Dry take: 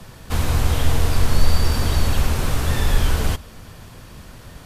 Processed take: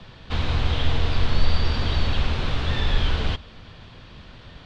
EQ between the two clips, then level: ladder low-pass 4300 Hz, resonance 45%; +5.0 dB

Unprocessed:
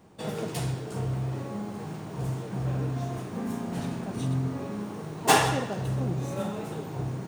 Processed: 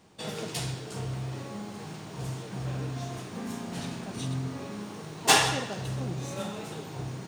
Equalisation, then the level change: bell 4600 Hz +10 dB 2.7 oct; -4.5 dB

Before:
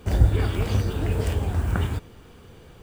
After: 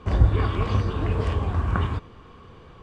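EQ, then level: LPF 4100 Hz 12 dB/oct; bell 1100 Hz +14.5 dB 0.21 oct; 0.0 dB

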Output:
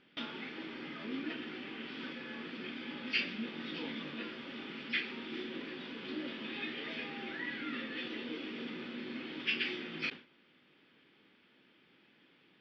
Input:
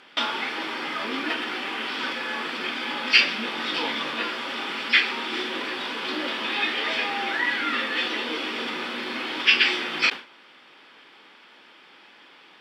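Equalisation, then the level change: air absorption 170 m; passive tone stack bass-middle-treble 10-0-1; high shelf 4800 Hz -10 dB; +13.0 dB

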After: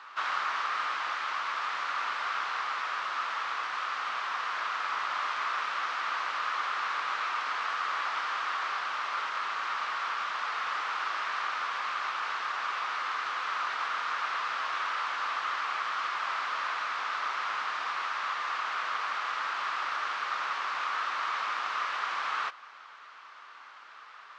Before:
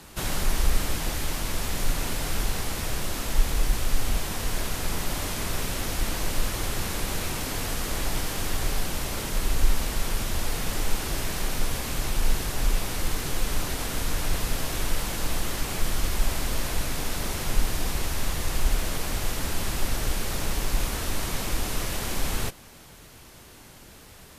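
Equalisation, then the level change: Gaussian blur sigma 2.2 samples; resonant high-pass 1200 Hz, resonance Q 4.4; 0.0 dB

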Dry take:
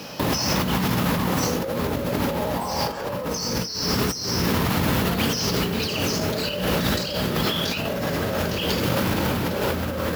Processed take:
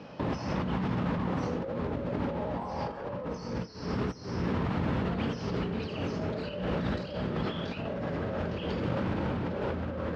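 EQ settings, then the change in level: tape spacing loss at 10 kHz 27 dB; high shelf 6000 Hz -9 dB; -6.5 dB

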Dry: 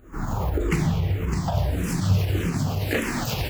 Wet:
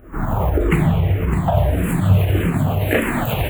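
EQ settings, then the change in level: Butterworth band-stop 5400 Hz, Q 0.93; bell 640 Hz +5.5 dB 0.36 oct; +6.5 dB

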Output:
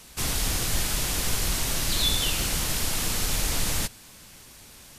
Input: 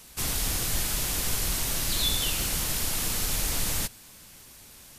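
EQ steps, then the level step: high shelf 12000 Hz -8.5 dB; +3.0 dB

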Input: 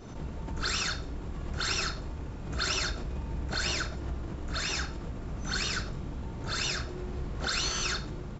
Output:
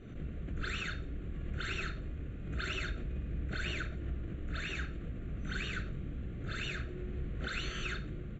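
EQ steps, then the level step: air absorption 87 m; fixed phaser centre 2200 Hz, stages 4; -2.5 dB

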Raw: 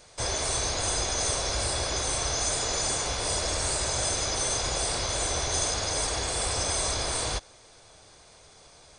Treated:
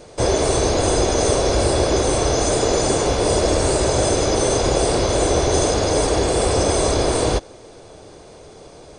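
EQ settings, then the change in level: low shelf 300 Hz +7.5 dB; bell 380 Hz +14 dB 2.2 oct; bell 2800 Hz +2.5 dB 0.24 oct; +3.0 dB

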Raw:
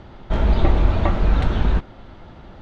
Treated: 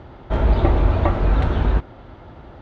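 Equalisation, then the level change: HPF 47 Hz; bell 190 Hz -8.5 dB 0.37 oct; high shelf 2600 Hz -9.5 dB; +3.0 dB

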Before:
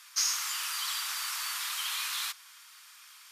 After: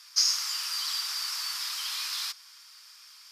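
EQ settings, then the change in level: low shelf 300 Hz +10.5 dB; bell 5000 Hz +13.5 dB 0.46 oct; -4.0 dB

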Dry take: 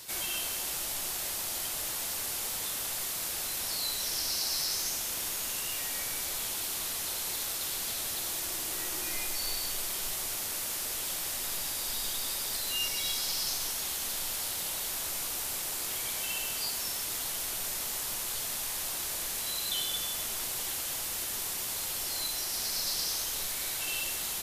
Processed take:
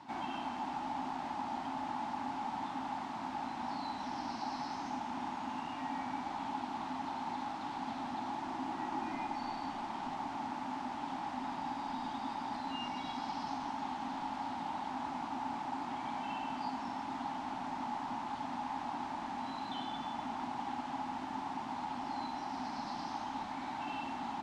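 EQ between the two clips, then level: double band-pass 470 Hz, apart 1.7 oct; air absorption 110 m; low shelf 400 Hz +3 dB; +15.5 dB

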